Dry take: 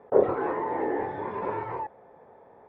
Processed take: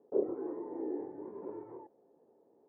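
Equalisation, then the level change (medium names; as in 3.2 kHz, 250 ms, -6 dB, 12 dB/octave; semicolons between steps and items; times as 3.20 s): band-pass filter 320 Hz, Q 3; distance through air 350 m; -3.5 dB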